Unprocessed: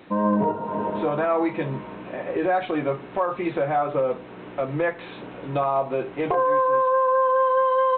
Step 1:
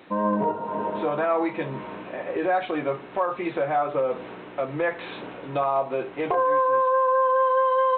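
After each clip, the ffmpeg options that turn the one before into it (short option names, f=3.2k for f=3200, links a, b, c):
-af "lowshelf=f=230:g=-8,areverse,acompressor=mode=upward:threshold=-30dB:ratio=2.5,areverse"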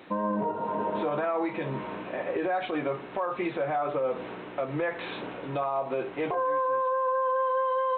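-af "alimiter=limit=-20.5dB:level=0:latency=1:release=82"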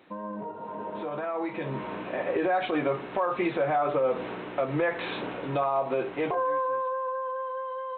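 -af "dynaudnorm=f=250:g=13:m=11dB,volume=-8dB"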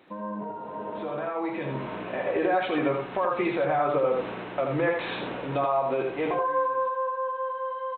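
-af "aecho=1:1:82:0.596"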